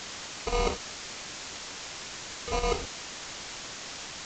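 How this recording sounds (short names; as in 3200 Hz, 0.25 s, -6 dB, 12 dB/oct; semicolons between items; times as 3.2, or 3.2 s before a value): aliases and images of a low sample rate 1700 Hz, jitter 0%; chopped level 3.8 Hz, depth 60%, duty 85%; a quantiser's noise floor 6-bit, dither triangular; µ-law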